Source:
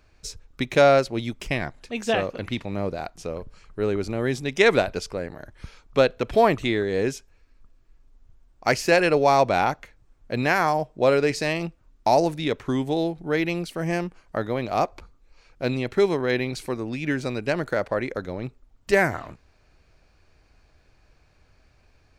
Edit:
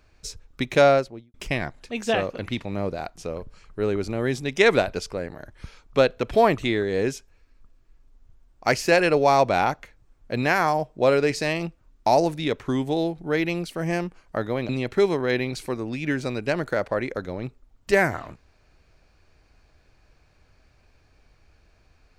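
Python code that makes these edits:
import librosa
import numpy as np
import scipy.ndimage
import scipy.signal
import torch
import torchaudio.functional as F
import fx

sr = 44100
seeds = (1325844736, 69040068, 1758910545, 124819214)

y = fx.studio_fade_out(x, sr, start_s=0.82, length_s=0.52)
y = fx.edit(y, sr, fx.cut(start_s=14.69, length_s=1.0), tone=tone)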